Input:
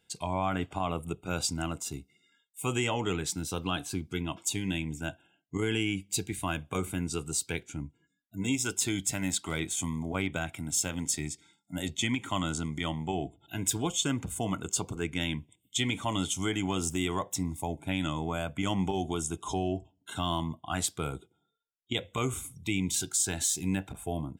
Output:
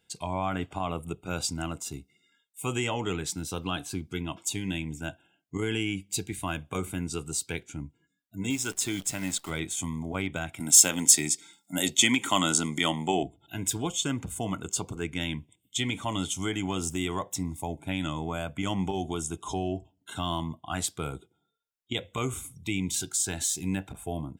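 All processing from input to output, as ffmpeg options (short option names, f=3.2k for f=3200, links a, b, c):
-filter_complex "[0:a]asettb=1/sr,asplit=3[a][b][c];[a]atrim=end=8.504[d];[b]atrim=start=8.5:end=9.5,asetpts=PTS-STARTPTS,afade=t=in:d=0.004:c=qsin,afade=t=out:st=0.996:d=0.004:c=qsin,highpass=f=99:p=1,acrusher=bits=8:dc=4:mix=0:aa=0.000001[e];[c]atrim=start=9.496[f];[d][e]acrossfade=d=0.004:c1=hsin:c2=qsin[g];[g][f]acrossfade=d=0.004:c1=qsin:c2=hsin,asettb=1/sr,asplit=3[h][i][j];[h]atrim=end=10.604[k];[i]atrim=start=10.6:end=13.23,asetpts=PTS-STARTPTS,afade=t=in:d=0.004:c=qsin,afade=t=out:st=2.626:d=0.004:c=qsin,highpass=210,highshelf=f=4.6k:g=9,acontrast=70[l];[j]atrim=start=13.226[m];[k][l]acrossfade=d=0.004:c1=hsin:c2=qsin[n];[n][m]acrossfade=d=0.004:c1=qsin:c2=hsin"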